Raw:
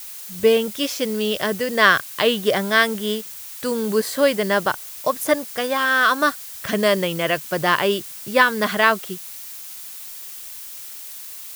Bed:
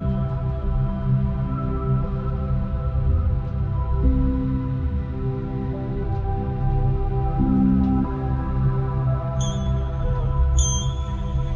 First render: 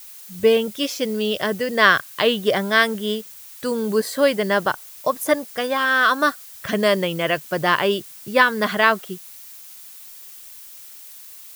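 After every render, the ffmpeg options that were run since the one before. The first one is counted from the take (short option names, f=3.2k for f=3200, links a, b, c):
-af "afftdn=nr=6:nf=-36"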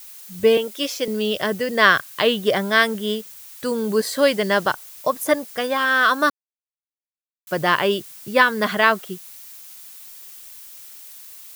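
-filter_complex "[0:a]asettb=1/sr,asplit=3[a][b][c];[a]atrim=end=0.574[d];[b]atrim=start=0.57:end=1.08,asetpts=PTS-STARTPTS,afade=t=in:d=0.004:c=qsin,afade=t=out:st=0.506:d=0.004:c=qsin,highpass=f=280:w=0.5412,highpass=f=280:w=1.3066[e];[c]atrim=start=1.076[f];[d][e]acrossfade=d=0.004:c1=hsin:c2=qsin[g];[g][f]acrossfade=d=0.004:c1=qsin:c2=hsin,asettb=1/sr,asplit=3[h][i][j];[h]atrim=end=3.994[k];[i]atrim=start=3.99:end=4.74,asetpts=PTS-STARTPTS,afade=t=in:d=0.004:c=qsin,afade=t=out:st=0.746:d=0.004:c=qsin,equalizer=f=4.7k:w=0.66:g=3.5[l];[j]atrim=start=4.736[m];[k][l]acrossfade=d=0.004:c1=hsin:c2=qsin[n];[n][m]acrossfade=d=0.004:c1=qsin:c2=hsin,asplit=3[o][p][q];[o]atrim=end=6.3,asetpts=PTS-STARTPTS,afade=t=out:st=6.296:d=0.004:c=hsin[r];[p]atrim=start=6.3:end=7.47,asetpts=PTS-STARTPTS,volume=0[s];[q]atrim=start=7.47,asetpts=PTS-STARTPTS,afade=t=in:d=0.004:c=hsin[t];[r][s][t]concat=n=3:v=0:a=1"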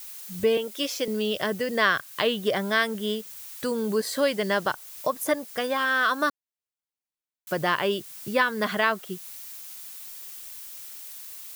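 -af "acompressor=threshold=-31dB:ratio=1.5"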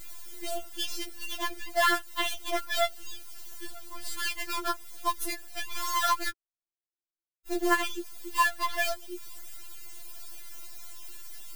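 -filter_complex "[0:a]acrossover=split=680[a][b];[b]acrusher=bits=5:dc=4:mix=0:aa=0.000001[c];[a][c]amix=inputs=2:normalize=0,afftfilt=real='re*4*eq(mod(b,16),0)':imag='im*4*eq(mod(b,16),0)':win_size=2048:overlap=0.75"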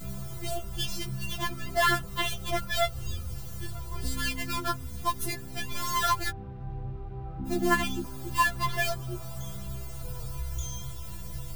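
-filter_complex "[1:a]volume=-16dB[a];[0:a][a]amix=inputs=2:normalize=0"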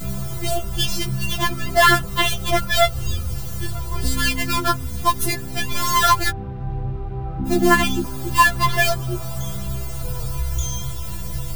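-af "volume=10.5dB,alimiter=limit=-2dB:level=0:latency=1"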